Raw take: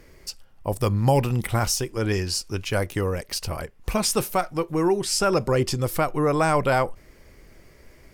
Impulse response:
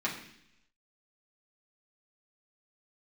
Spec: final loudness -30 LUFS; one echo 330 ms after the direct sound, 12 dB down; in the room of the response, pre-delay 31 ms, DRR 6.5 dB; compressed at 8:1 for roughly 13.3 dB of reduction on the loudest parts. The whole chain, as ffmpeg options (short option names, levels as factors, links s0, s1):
-filter_complex "[0:a]acompressor=threshold=0.0316:ratio=8,aecho=1:1:330:0.251,asplit=2[s0][s1];[1:a]atrim=start_sample=2205,adelay=31[s2];[s1][s2]afir=irnorm=-1:irlink=0,volume=0.211[s3];[s0][s3]amix=inputs=2:normalize=0,volume=1.5"